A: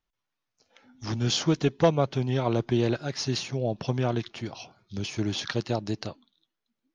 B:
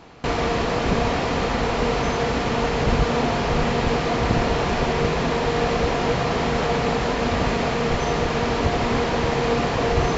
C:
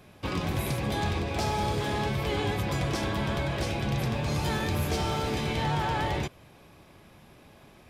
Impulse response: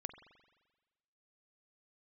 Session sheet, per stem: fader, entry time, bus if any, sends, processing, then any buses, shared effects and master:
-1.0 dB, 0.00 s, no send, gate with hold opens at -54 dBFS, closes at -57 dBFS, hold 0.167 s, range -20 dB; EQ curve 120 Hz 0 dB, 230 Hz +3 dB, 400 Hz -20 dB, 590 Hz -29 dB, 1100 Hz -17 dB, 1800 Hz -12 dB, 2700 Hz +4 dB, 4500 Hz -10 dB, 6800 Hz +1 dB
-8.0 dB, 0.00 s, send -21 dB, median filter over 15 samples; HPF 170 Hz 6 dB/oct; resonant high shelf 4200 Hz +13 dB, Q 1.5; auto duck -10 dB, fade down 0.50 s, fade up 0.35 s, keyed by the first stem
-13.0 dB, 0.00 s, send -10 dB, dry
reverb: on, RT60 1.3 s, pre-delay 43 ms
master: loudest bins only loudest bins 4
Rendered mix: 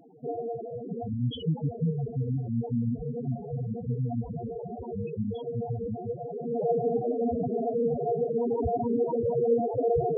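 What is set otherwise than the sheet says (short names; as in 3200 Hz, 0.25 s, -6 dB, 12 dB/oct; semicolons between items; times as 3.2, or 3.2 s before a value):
stem B -8.0 dB -> +1.5 dB; stem C: send -10 dB -> -18.5 dB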